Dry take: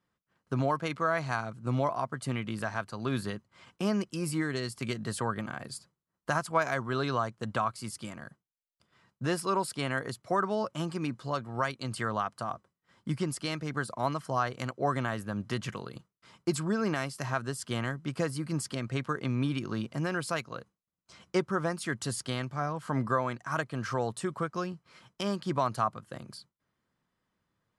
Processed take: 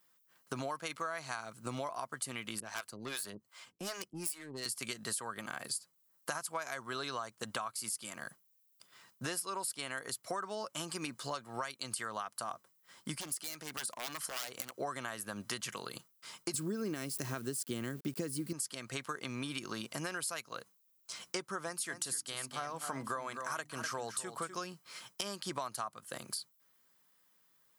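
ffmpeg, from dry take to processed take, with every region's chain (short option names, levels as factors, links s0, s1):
-filter_complex "[0:a]asettb=1/sr,asplit=3[s0][s1][s2];[s0]atrim=end=2.604[s3];[s1]atrim=start=2.6:end=4.66,asetpts=PTS-STARTPTS,afade=t=in:d=0.004:c=qsin,afade=t=out:st=2.056:d=0.004:c=qsin,acrossover=split=450[s4][s5];[s4]aeval=exprs='val(0)*(1-1/2+1/2*cos(2*PI*2.6*n/s))':c=same[s6];[s5]aeval=exprs='val(0)*(1-1/2-1/2*cos(2*PI*2.6*n/s))':c=same[s7];[s6][s7]amix=inputs=2:normalize=0,aeval=exprs='(tanh(39.8*val(0)+0.55)-tanh(0.55))/39.8':c=same[s8];[s2]atrim=start=4.656[s9];[s3][s8]acrossfade=d=0.004:c1=hsin:c2=qsin[s10];[s10][s9]acrossfade=d=0.004:c1=qsin:c2=hsin,asettb=1/sr,asplit=3[s11][s12][s13];[s11]atrim=end=13.154[s14];[s12]atrim=start=13.15:end=14.75,asetpts=PTS-STARTPTS,afade=t=in:d=0.004:c=qsin,afade=t=out:st=1.596:d=0.004:c=qsin,lowshelf=f=110:g=-8,aeval=exprs='0.0335*(abs(mod(val(0)/0.0335+3,4)-2)-1)':c=same,acompressor=threshold=0.00891:ratio=4:attack=3.2:release=140:knee=1:detection=peak[s15];[s13]atrim=start=14.746[s16];[s14][s15]acrossfade=d=0.004:c1=hsin:c2=qsin[s17];[s17][s16]acrossfade=d=0.004:c1=qsin:c2=hsin,asettb=1/sr,asplit=3[s18][s19][s20];[s18]atrim=end=16.544[s21];[s19]atrim=start=16.54:end=18.53,asetpts=PTS-STARTPTS,afade=t=in:d=0.004:c=qsin,afade=t=out:st=1.986:d=0.004:c=qsin,aeval=exprs='val(0)*gte(abs(val(0)),0.00355)':c=same,lowshelf=f=520:t=q:w=1.5:g=12.5[s22];[s20]atrim=start=18.526[s23];[s21][s22]acrossfade=d=0.004:c1=hsin:c2=qsin[s24];[s24][s23]acrossfade=d=0.004:c1=qsin:c2=hsin,asettb=1/sr,asplit=3[s25][s26][s27];[s25]atrim=end=21.624[s28];[s26]atrim=start=21.62:end=24.61,asetpts=PTS-STARTPTS,afade=t=in:d=0.004:c=qsin,afade=t=out:st=2.986:d=0.004:c=qsin,bandreject=f=50:t=h:w=6,bandreject=f=100:t=h:w=6,bandreject=f=150:t=h:w=6,bandreject=f=200:t=h:w=6,bandreject=f=250:t=h:w=6,bandreject=f=300:t=h:w=6,aecho=1:1:250:0.266,atrim=end_sample=131859[s29];[s27]atrim=start=24.606[s30];[s28][s29]acrossfade=d=0.004:c1=hsin:c2=qsin[s31];[s31][s30]acrossfade=d=0.004:c1=qsin:c2=hsin,aemphasis=mode=production:type=riaa,acompressor=threshold=0.0112:ratio=6,volume=1.41"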